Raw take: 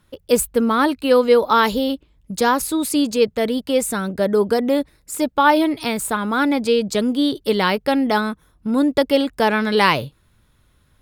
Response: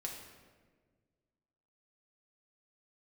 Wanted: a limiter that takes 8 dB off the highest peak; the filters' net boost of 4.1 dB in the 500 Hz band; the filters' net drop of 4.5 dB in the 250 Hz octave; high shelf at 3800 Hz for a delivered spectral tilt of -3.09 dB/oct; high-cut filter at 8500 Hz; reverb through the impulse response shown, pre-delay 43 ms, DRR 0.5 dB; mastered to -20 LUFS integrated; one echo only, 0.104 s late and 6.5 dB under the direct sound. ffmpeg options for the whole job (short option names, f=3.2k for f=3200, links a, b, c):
-filter_complex "[0:a]lowpass=8.5k,equalizer=f=250:t=o:g=-7,equalizer=f=500:t=o:g=6,highshelf=f=3.8k:g=6,alimiter=limit=-7dB:level=0:latency=1,aecho=1:1:104:0.473,asplit=2[a][b];[1:a]atrim=start_sample=2205,adelay=43[c];[b][c]afir=irnorm=-1:irlink=0,volume=0.5dB[d];[a][d]amix=inputs=2:normalize=0,volume=-4.5dB"